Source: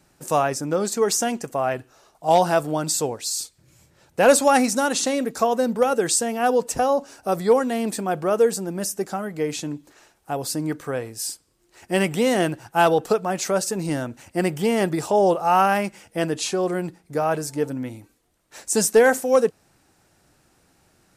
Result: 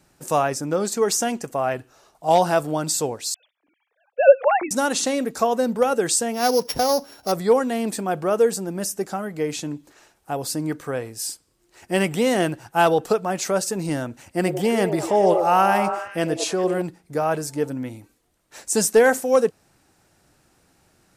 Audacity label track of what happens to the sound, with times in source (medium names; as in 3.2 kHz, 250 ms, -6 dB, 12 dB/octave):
3.340000	4.710000	formants replaced by sine waves
6.340000	7.320000	sorted samples in blocks of 8 samples
14.250000	16.820000	repeats whose band climbs or falls 101 ms, band-pass from 470 Hz, each repeat 0.7 oct, level -4 dB